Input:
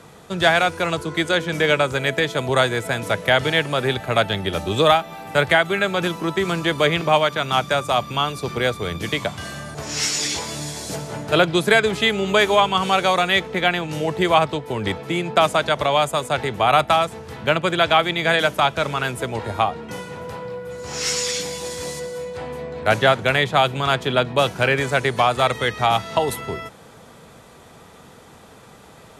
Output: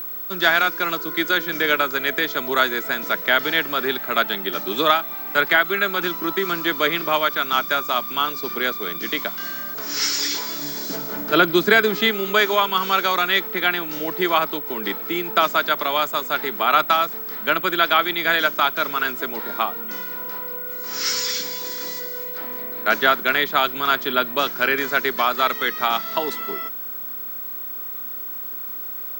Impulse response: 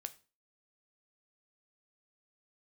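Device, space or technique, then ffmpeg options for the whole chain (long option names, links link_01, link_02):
old television with a line whistle: -filter_complex "[0:a]asettb=1/sr,asplit=3[link_01][link_02][link_03];[link_01]atrim=end=10.624[link_04];[link_02]atrim=start=10.62:end=12.11,asetpts=PTS-STARTPTS,afade=type=in:duration=0.004:curve=qsin,afade=type=out:start_time=1.486:duration=0.004:curve=qsin,lowshelf=frequency=420:gain=7[link_05];[link_03]atrim=start=12.106[link_06];[link_04][link_05]acrossfade=duration=0.004:curve1=hsin:curve2=qsin[link_07];[link_07][link_06]acrossfade=duration=0.004:curve1=qsin:curve2=hsin,highpass=frequency=230:width=0.5412,highpass=frequency=230:width=1.3066,equalizer=frequency=520:width_type=q:width=4:gain=-9,equalizer=frequency=770:width_type=q:width=4:gain=-8,equalizer=frequency=1400:width_type=q:width=4:gain=5,equalizer=frequency=2700:width_type=q:width=4:gain=-4,equalizer=frequency=5000:width_type=q:width=4:gain=4,lowpass=frequency=6600:width=0.5412,lowpass=frequency=6600:width=1.3066,aeval=exprs='val(0)+0.0398*sin(2*PI*15734*n/s)':channel_layout=same"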